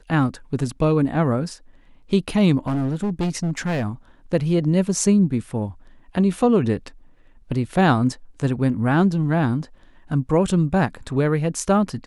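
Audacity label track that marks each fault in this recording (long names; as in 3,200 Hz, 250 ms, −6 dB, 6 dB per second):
2.590000	3.890000	clipping −19 dBFS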